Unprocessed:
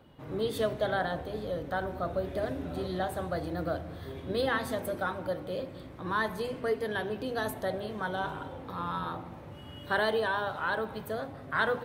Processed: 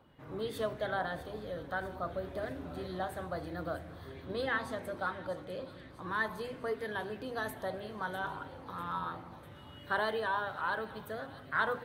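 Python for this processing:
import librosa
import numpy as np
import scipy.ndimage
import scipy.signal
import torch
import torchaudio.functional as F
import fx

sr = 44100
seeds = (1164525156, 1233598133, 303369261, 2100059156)

p1 = fx.bessel_lowpass(x, sr, hz=8600.0, order=2, at=(4.08, 5.98))
p2 = p1 + fx.echo_wet_highpass(p1, sr, ms=648, feedback_pct=59, hz=3100.0, wet_db=-11, dry=0)
p3 = fx.bell_lfo(p2, sr, hz=3.0, low_hz=970.0, high_hz=2000.0, db=7)
y = F.gain(torch.from_numpy(p3), -6.5).numpy()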